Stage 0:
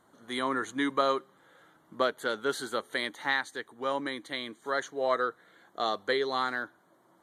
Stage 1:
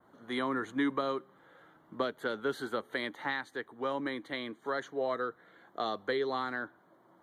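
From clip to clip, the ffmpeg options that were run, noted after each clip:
ffmpeg -i in.wav -filter_complex "[0:a]adynamicequalizer=threshold=0.00355:dfrequency=5300:dqfactor=0.82:tfrequency=5300:tqfactor=0.82:attack=5:release=100:ratio=0.375:range=2:mode=cutabove:tftype=bell,acrossover=split=300|3000[link_01][link_02][link_03];[link_02]acompressor=threshold=-32dB:ratio=6[link_04];[link_01][link_04][link_03]amix=inputs=3:normalize=0,equalizer=frequency=8500:width=0.54:gain=-14,volume=1.5dB" out.wav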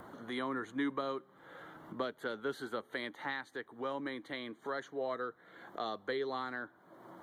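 ffmpeg -i in.wav -af "acompressor=mode=upward:threshold=-34dB:ratio=2.5,volume=-4.5dB" out.wav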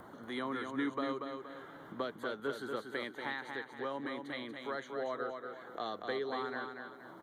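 ffmpeg -i in.wav -af "aecho=1:1:236|472|708|944|1180:0.531|0.212|0.0849|0.034|0.0136,volume=-1dB" out.wav

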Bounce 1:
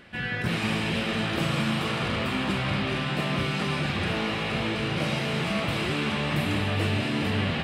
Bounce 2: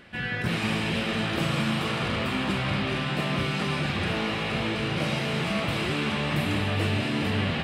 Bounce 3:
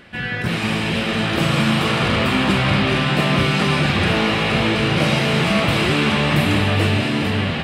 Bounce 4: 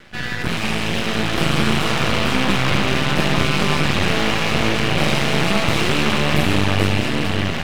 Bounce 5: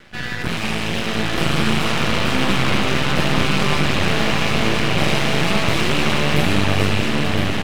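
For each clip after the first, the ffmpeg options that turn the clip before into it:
ffmpeg -i in.wav -af anull out.wav
ffmpeg -i in.wav -af "dynaudnorm=framelen=560:gausssize=5:maxgain=4.5dB,volume=5.5dB" out.wav
ffmpeg -i in.wav -af "aeval=exprs='max(val(0),0)':channel_layout=same,volume=3.5dB" out.wav
ffmpeg -i in.wav -af "aecho=1:1:1011:0.447,volume=-1dB" out.wav

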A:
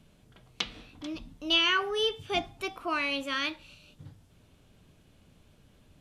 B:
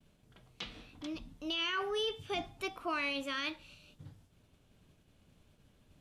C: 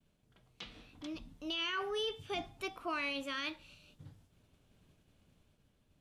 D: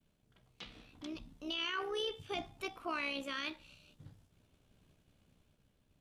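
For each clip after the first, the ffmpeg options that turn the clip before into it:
ffmpeg -i in.wav -af "agate=range=-33dB:threshold=-56dB:ratio=3:detection=peak,alimiter=limit=-23dB:level=0:latency=1:release=19,volume=-3.5dB" out.wav
ffmpeg -i in.wav -af "dynaudnorm=framelen=110:gausssize=13:maxgain=5dB,volume=-7dB" out.wav
ffmpeg -i in.wav -af "tremolo=f=65:d=0.462,volume=1dB" out.wav

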